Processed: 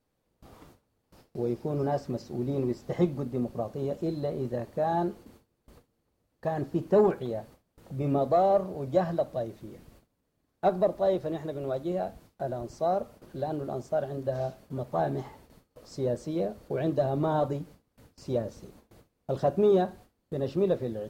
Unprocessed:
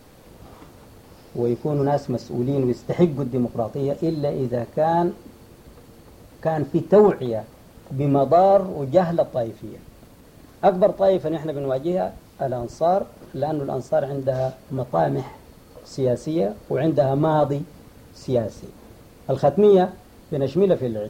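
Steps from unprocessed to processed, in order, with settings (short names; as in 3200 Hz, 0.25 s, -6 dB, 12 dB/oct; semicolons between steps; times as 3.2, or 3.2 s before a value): gate with hold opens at -34 dBFS; gain -8 dB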